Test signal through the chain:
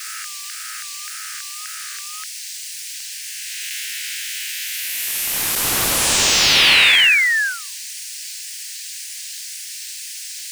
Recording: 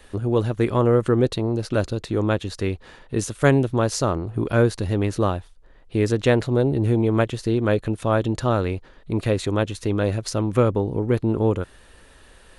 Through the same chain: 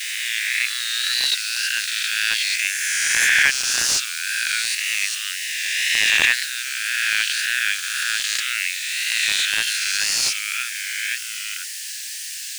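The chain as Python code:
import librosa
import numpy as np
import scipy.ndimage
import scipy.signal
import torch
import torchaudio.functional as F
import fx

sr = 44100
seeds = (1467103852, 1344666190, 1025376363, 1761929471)

p1 = fx.spec_swells(x, sr, rise_s=2.87)
p2 = fx.dmg_noise_band(p1, sr, seeds[0], low_hz=4200.0, high_hz=9900.0, level_db=-41.0)
p3 = fx.vibrato(p2, sr, rate_hz=1.9, depth_cents=70.0)
p4 = fx.quant_dither(p3, sr, seeds[1], bits=6, dither='triangular')
p5 = p3 + (p4 * librosa.db_to_amplitude(-3.0))
p6 = scipy.signal.sosfilt(scipy.signal.butter(12, 1600.0, 'highpass', fs=sr, output='sos'), p5)
p7 = fx.peak_eq(p6, sr, hz=2700.0, db=6.0, octaves=0.77)
p8 = fx.slew_limit(p7, sr, full_power_hz=770.0)
y = p8 * librosa.db_to_amplitude(2.0)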